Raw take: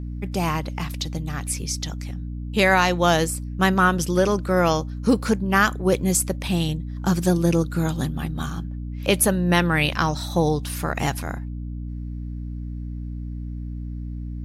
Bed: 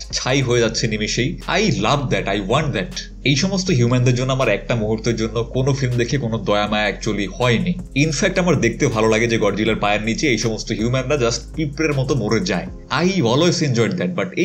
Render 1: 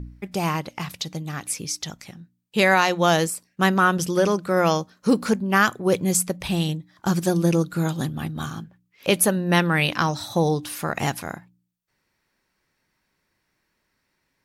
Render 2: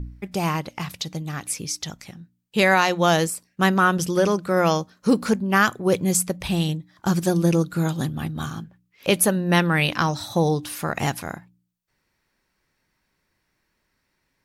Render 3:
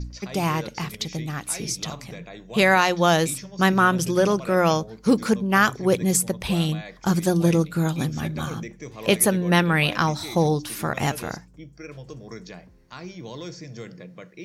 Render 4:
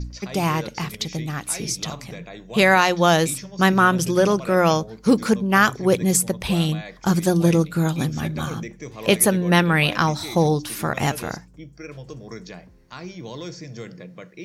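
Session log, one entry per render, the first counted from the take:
de-hum 60 Hz, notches 5
low shelf 72 Hz +6 dB
add bed -21 dB
gain +2 dB

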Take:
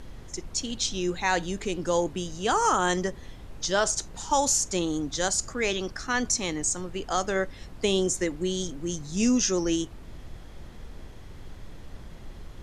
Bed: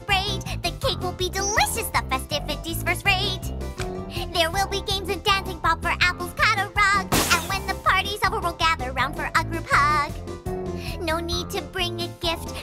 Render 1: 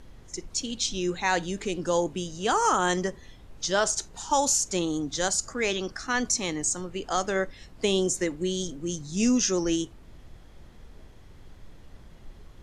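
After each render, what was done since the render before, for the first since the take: noise print and reduce 6 dB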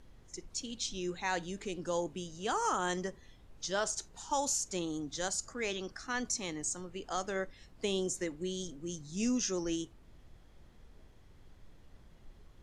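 gain -9 dB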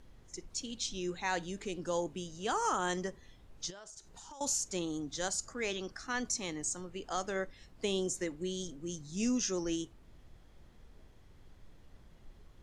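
3.7–4.41 compressor 10:1, threshold -47 dBFS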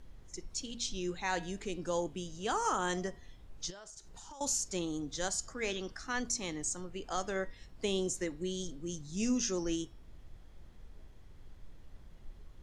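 low shelf 66 Hz +7 dB; de-hum 237.4 Hz, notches 23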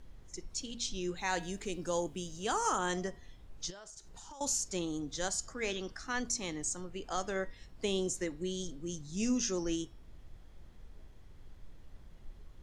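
1.17–2.79 high shelf 8700 Hz +10 dB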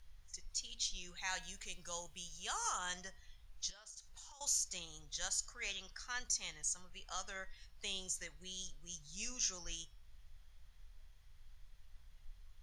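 passive tone stack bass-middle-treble 10-0-10; notch 7700 Hz, Q 7.1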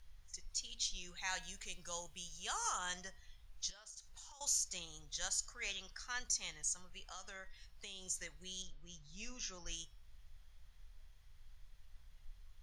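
7.06–8.1 compressor 3:1, threshold -47 dBFS; 8.62–9.66 air absorption 140 m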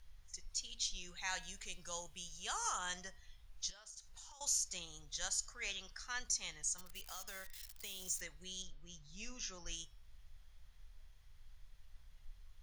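6.78–8.21 switching spikes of -43 dBFS

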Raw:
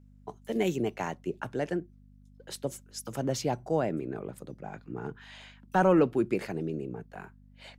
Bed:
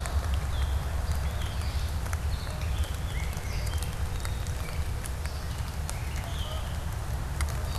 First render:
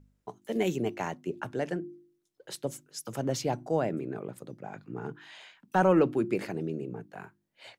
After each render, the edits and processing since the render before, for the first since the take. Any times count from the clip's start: de-hum 50 Hz, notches 7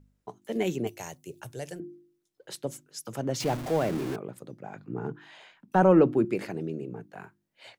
0.87–1.8 EQ curve 140 Hz 0 dB, 210 Hz -15 dB, 500 Hz -5 dB, 1300 Hz -11 dB, 11000 Hz +14 dB; 3.4–4.16 zero-crossing step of -32 dBFS; 4.8–6.25 tilt shelf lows +4.5 dB, about 1400 Hz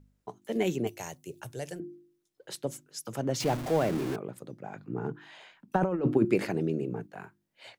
5.76–7.07 negative-ratio compressor -23 dBFS, ratio -0.5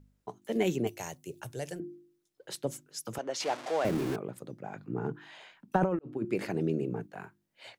3.18–3.85 BPF 550–7300 Hz; 5.99–6.68 fade in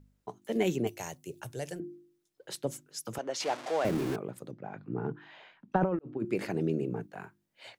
4.51–6.2 air absorption 180 m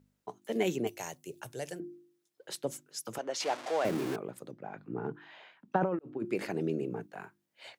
HPF 230 Hz 6 dB/oct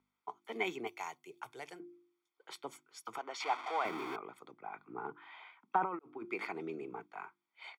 three-band isolator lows -24 dB, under 420 Hz, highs -17 dB, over 3400 Hz; comb 0.9 ms, depth 82%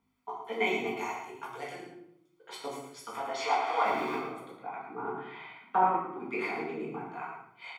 echo 0.111 s -8.5 dB; shoebox room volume 170 m³, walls mixed, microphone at 1.7 m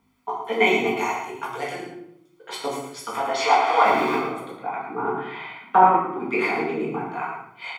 gain +10.5 dB

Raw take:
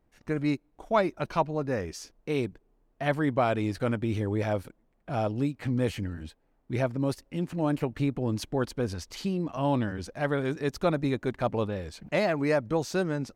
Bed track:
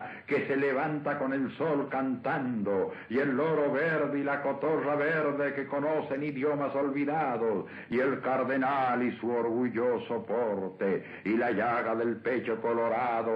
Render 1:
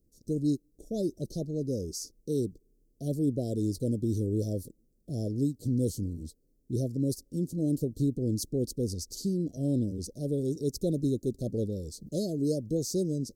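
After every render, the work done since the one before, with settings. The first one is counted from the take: inverse Chebyshev band-stop 900–2600 Hz, stop band 50 dB; high shelf 5500 Hz +9.5 dB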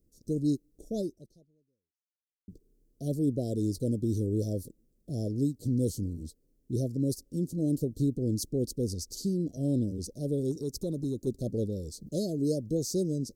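0.99–2.48 fade out exponential; 10.51–11.27 compressor 2:1, threshold -31 dBFS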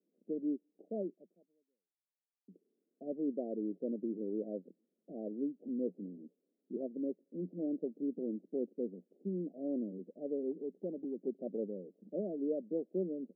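Chebyshev band-pass 180–810 Hz, order 5; tilt +3.5 dB/oct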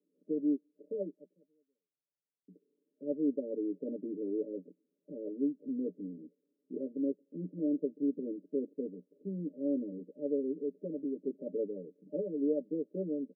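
FFT band-pass 110–610 Hz; comb 6.9 ms, depth 86%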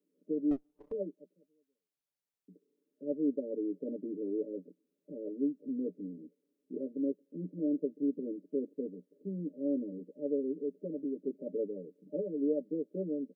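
0.51–0.92 minimum comb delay 0.33 ms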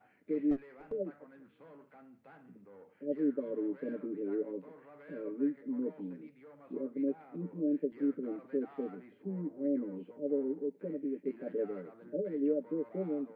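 add bed track -26.5 dB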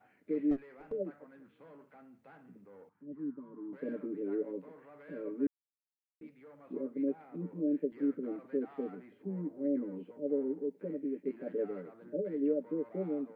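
2.89–3.73 EQ curve 130 Hz 0 dB, 320 Hz -8 dB, 540 Hz -25 dB, 1000 Hz +1 dB, 2100 Hz -19 dB; 5.47–6.21 mute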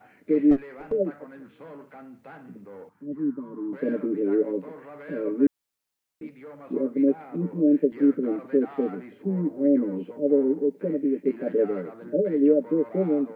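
gain +12 dB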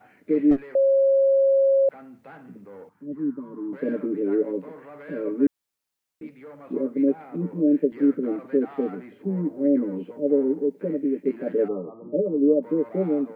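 0.75–1.89 bleep 544 Hz -15 dBFS; 11.68–12.63 brick-wall FIR low-pass 1300 Hz

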